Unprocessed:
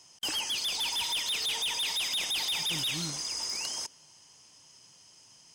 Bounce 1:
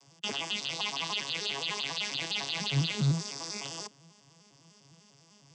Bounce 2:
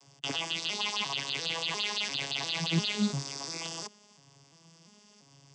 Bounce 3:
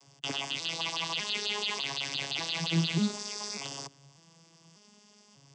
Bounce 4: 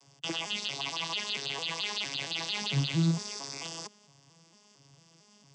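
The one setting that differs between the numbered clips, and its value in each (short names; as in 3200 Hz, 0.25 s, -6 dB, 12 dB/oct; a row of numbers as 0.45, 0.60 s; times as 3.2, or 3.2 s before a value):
arpeggiated vocoder, a note every: 0.1, 0.347, 0.594, 0.226 s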